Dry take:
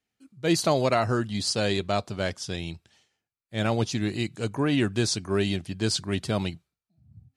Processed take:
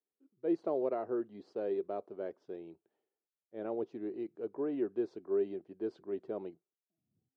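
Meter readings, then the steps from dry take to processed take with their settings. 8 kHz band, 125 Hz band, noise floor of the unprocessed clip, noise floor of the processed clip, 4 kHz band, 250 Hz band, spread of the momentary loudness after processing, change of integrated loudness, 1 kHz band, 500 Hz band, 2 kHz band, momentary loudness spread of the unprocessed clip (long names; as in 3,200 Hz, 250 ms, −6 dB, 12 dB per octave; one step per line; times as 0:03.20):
below −40 dB, −29.5 dB, below −85 dBFS, below −85 dBFS, below −35 dB, −10.5 dB, 11 LU, −10.5 dB, −15.0 dB, −6.5 dB, −25.5 dB, 10 LU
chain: four-pole ladder band-pass 440 Hz, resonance 55%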